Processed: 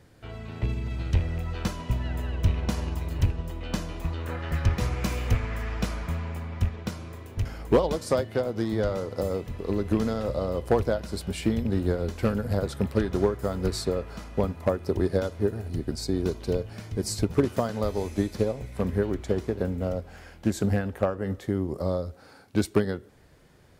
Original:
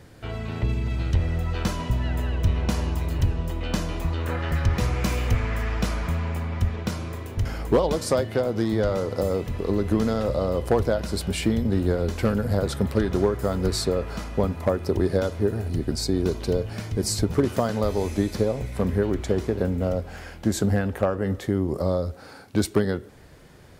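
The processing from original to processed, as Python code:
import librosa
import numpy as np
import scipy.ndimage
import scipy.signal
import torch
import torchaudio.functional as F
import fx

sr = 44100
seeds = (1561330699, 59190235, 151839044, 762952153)

y = fx.rattle_buzz(x, sr, strikes_db=-18.0, level_db=-30.0)
y = fx.upward_expand(y, sr, threshold_db=-30.0, expansion=1.5)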